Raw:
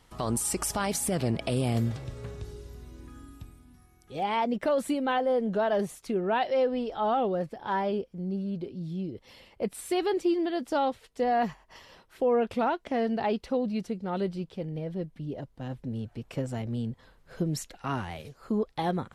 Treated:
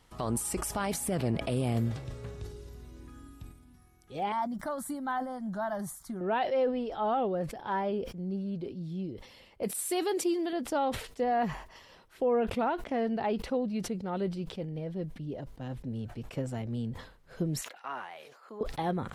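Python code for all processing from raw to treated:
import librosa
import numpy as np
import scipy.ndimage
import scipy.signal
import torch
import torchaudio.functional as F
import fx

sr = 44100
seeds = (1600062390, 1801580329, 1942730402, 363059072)

y = fx.chain(x, sr, fx.high_shelf(hz=6000.0, db=8.0),
    fx.fixed_phaser(hz=1100.0, stages=4), at=(4.32, 6.21))
y = fx.chain(y, sr, fx.highpass(hz=99.0, slope=12),
    fx.bass_treble(bass_db=-5, treble_db=12), at=(9.63, 10.53))
y = fx.chain(y, sr, fx.highpass(hz=710.0, slope=12),
    fx.peak_eq(hz=9500.0, db=-9.0, octaves=2.6),
    fx.sustainer(db_per_s=56.0), at=(17.61, 18.61))
y = fx.dynamic_eq(y, sr, hz=5400.0, q=0.81, threshold_db=-50.0, ratio=4.0, max_db=-5)
y = fx.sustainer(y, sr, db_per_s=95.0)
y = F.gain(torch.from_numpy(y), -2.5).numpy()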